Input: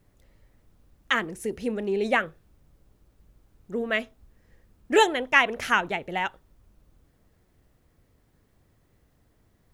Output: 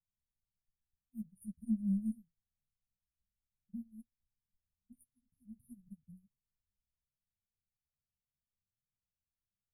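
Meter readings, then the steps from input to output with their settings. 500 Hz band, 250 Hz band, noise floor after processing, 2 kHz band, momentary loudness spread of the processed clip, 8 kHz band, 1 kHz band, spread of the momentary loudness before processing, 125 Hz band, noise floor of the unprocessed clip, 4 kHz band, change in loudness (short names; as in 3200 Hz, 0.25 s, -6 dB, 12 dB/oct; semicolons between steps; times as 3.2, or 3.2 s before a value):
under -40 dB, -6.5 dB, under -85 dBFS, under -40 dB, 22 LU, under -25 dB, under -40 dB, 12 LU, -2.5 dB, -66 dBFS, under -40 dB, -14.5 dB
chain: brick-wall FIR band-stop 240–9000 Hz; chorus voices 4, 0.72 Hz, delay 12 ms, depth 3.8 ms; upward expander 2.5:1, over -56 dBFS; gain +4 dB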